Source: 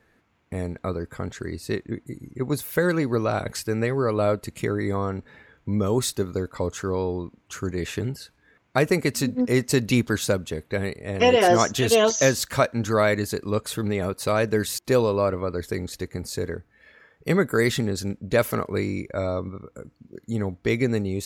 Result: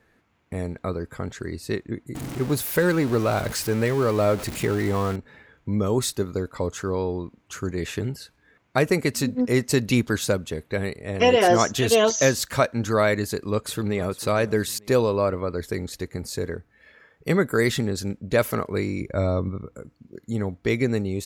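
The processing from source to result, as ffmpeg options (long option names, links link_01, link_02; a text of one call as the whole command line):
ffmpeg -i in.wav -filter_complex "[0:a]asettb=1/sr,asplit=3[link_01][link_02][link_03];[link_01]atrim=end=2.154[link_04];[link_02]atrim=start=2.15:end=5.16,asetpts=PTS-STARTPTS,afade=type=in:duration=0.004:curve=qsin,afade=type=out:start_time=3.006:duration=0.004:curve=qsin,aeval=exprs='val(0)+0.5*0.0355*sgn(val(0))':channel_layout=same[link_05];[link_03]atrim=start=5.156[link_06];[link_04][link_05]acrossfade=duration=0.004:curve1=hsin:curve2=qsin[link_07];[link_07][link_06]acrossfade=duration=0.004:curve1=qsin:curve2=hsin,asplit=2[link_08][link_09];[link_09]afade=type=in:start_time=13.23:duration=0.01,afade=type=out:start_time=14.07:duration=0.01,aecho=0:1:450|900|1350:0.141254|0.0423761|0.0127128[link_10];[link_08][link_10]amix=inputs=2:normalize=0,asettb=1/sr,asplit=3[link_11][link_12][link_13];[link_11]atrim=end=19.014[link_14];[link_12]atrim=start=19.01:end=19.75,asetpts=PTS-STARTPTS,afade=type=in:duration=0.004:curve=qsin,afade=type=out:start_time=0.736:duration=0.004:curve=qsin,lowshelf=frequency=270:gain=8[link_15];[link_13]atrim=start=19.746[link_16];[link_14][link_15]acrossfade=duration=0.004:curve1=hsin:curve2=qsin[link_17];[link_17][link_16]acrossfade=duration=0.004:curve1=qsin:curve2=hsin" out.wav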